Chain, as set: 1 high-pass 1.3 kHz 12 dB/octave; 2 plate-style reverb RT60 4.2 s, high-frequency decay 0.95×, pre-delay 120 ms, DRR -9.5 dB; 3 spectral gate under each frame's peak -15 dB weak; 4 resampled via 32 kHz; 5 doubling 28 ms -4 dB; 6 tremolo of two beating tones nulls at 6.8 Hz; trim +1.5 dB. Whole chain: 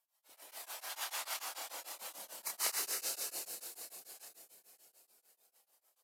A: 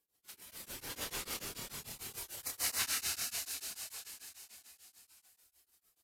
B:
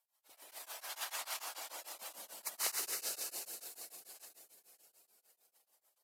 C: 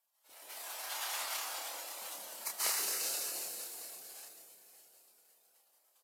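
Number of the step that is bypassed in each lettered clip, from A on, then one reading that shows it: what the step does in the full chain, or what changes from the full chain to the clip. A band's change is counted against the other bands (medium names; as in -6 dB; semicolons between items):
1, 250 Hz band +8.0 dB; 5, loudness change -1.5 LU; 6, momentary loudness spread change +1 LU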